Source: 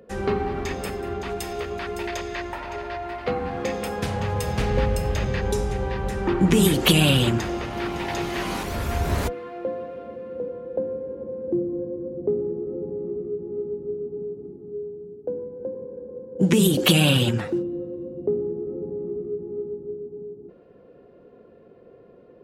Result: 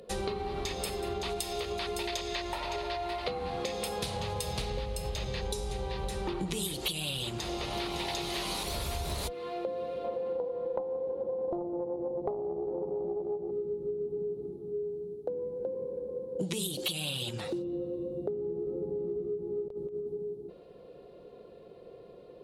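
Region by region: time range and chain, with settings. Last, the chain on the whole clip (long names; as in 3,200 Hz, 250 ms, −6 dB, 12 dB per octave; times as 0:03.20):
0:10.04–0:13.51: parametric band 690 Hz +8 dB 2 octaves + highs frequency-modulated by the lows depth 0.52 ms
0:19.68–0:20.19: noise gate with hold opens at −28 dBFS, closes at −37 dBFS + compressor whose output falls as the input rises −35 dBFS, ratio −0.5
whole clip: graphic EQ with 15 bands 100 Hz −6 dB, 250 Hz −9 dB, 1,600 Hz −8 dB, 4,000 Hz +11 dB, 10,000 Hz +9 dB; downward compressor 16 to 1, threshold −32 dBFS; level +1.5 dB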